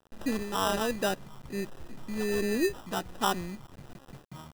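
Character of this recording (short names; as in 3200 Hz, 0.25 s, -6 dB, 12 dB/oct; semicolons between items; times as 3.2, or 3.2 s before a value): a quantiser's noise floor 8-bit, dither none; phasing stages 4, 1.3 Hz, lowest notch 520–2400 Hz; aliases and images of a low sample rate 2200 Hz, jitter 0%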